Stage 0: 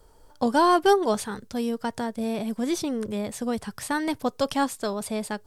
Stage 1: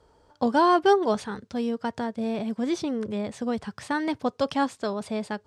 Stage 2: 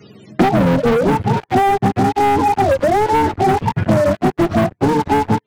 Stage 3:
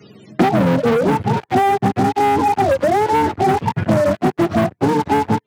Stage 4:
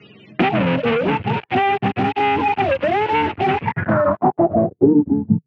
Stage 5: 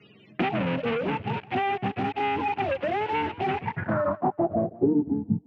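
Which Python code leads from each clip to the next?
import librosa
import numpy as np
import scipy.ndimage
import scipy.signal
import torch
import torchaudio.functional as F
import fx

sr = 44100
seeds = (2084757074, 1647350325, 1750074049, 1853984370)

y1 = scipy.signal.sosfilt(scipy.signal.butter(2, 67.0, 'highpass', fs=sr, output='sos'), x)
y1 = fx.air_absorb(y1, sr, metres=96.0)
y2 = fx.octave_mirror(y1, sr, pivot_hz=430.0)
y2 = fx.leveller(y2, sr, passes=5)
y2 = fx.band_squash(y2, sr, depth_pct=100)
y3 = scipy.signal.sosfilt(scipy.signal.butter(2, 91.0, 'highpass', fs=sr, output='sos'), y2)
y3 = y3 * librosa.db_to_amplitude(-1.0)
y4 = fx.filter_sweep_lowpass(y3, sr, from_hz=2700.0, to_hz=150.0, start_s=3.53, end_s=5.46, q=4.2)
y4 = y4 * librosa.db_to_amplitude(-3.5)
y5 = fx.echo_warbled(y4, sr, ms=169, feedback_pct=30, rate_hz=2.8, cents=130, wet_db=-21.0)
y5 = y5 * librosa.db_to_amplitude(-9.0)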